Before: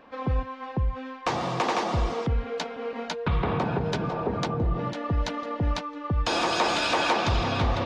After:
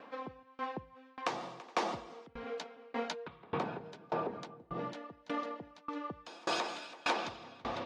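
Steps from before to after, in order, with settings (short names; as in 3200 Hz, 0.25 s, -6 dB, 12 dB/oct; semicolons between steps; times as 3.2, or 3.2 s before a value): compressor, threshold -28 dBFS, peak gain reduction 9 dB; HPF 210 Hz 12 dB/oct; dB-ramp tremolo decaying 1.7 Hz, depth 28 dB; gain +2 dB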